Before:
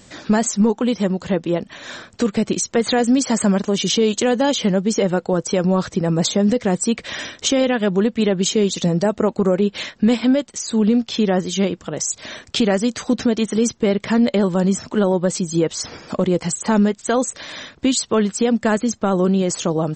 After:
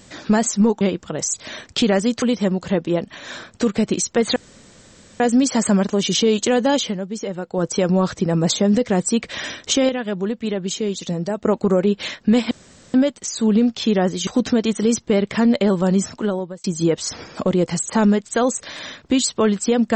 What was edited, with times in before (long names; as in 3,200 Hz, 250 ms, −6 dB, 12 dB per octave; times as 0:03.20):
0:02.95: splice in room tone 0.84 s
0:04.55–0:05.39: duck −9 dB, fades 0.14 s
0:07.64–0:09.20: clip gain −6 dB
0:10.26: splice in room tone 0.43 s
0:11.59–0:13.00: move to 0:00.81
0:14.78–0:15.37: fade out